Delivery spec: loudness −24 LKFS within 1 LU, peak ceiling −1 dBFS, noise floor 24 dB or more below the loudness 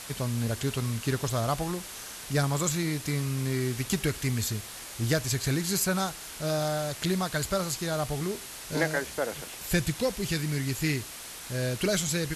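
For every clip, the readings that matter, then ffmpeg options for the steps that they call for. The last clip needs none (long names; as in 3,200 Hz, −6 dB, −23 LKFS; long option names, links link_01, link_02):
background noise floor −42 dBFS; target noise floor −54 dBFS; integrated loudness −29.5 LKFS; sample peak −12.5 dBFS; target loudness −24.0 LKFS
→ -af "afftdn=noise_reduction=12:noise_floor=-42"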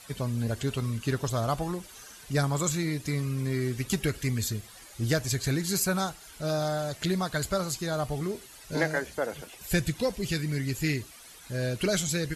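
background noise floor −50 dBFS; target noise floor −54 dBFS
→ -af "afftdn=noise_reduction=6:noise_floor=-50"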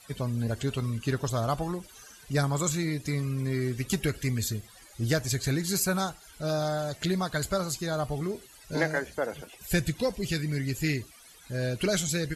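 background noise floor −53 dBFS; target noise floor −54 dBFS
→ -af "afftdn=noise_reduction=6:noise_floor=-53"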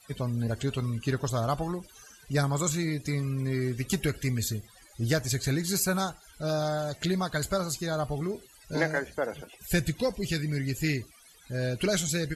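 background noise floor −56 dBFS; integrated loudness −30.0 LKFS; sample peak −12.5 dBFS; target loudness −24.0 LKFS
→ -af "volume=6dB"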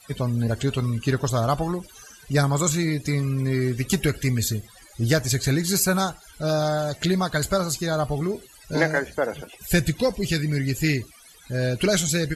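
integrated loudness −24.0 LKFS; sample peak −6.5 dBFS; background noise floor −50 dBFS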